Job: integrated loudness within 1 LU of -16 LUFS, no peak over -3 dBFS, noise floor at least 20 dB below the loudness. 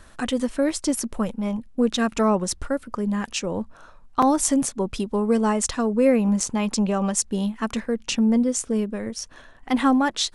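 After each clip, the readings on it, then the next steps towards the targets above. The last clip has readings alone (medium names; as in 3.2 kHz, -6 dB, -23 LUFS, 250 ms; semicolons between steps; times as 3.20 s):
dropouts 2; longest dropout 4.6 ms; loudness -23.5 LUFS; peak level -5.5 dBFS; loudness target -16.0 LUFS
-> interpolate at 4.22/6.40 s, 4.6 ms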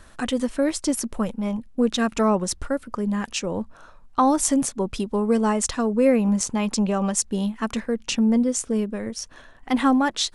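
dropouts 0; loudness -23.0 LUFS; peak level -5.5 dBFS; loudness target -16.0 LUFS
-> trim +7 dB; peak limiter -3 dBFS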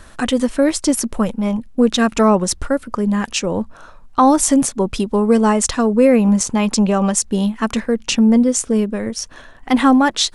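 loudness -16.5 LUFS; peak level -3.0 dBFS; noise floor -42 dBFS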